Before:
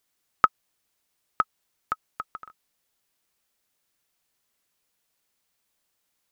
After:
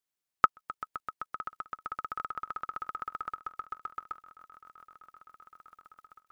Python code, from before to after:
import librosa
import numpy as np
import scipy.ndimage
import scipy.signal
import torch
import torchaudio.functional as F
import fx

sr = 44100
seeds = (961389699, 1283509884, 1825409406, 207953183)

y = fx.echo_swell(x, sr, ms=129, loudest=8, wet_db=-14)
y = fx.level_steps(y, sr, step_db=18)